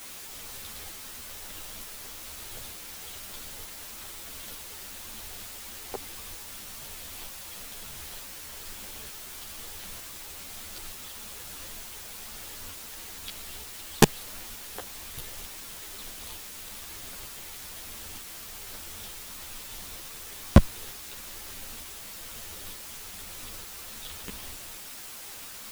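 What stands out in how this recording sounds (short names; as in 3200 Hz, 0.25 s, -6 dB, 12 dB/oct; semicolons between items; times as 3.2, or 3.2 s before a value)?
tremolo saw up 1.1 Hz, depth 70%; a quantiser's noise floor 8-bit, dither triangular; a shimmering, thickened sound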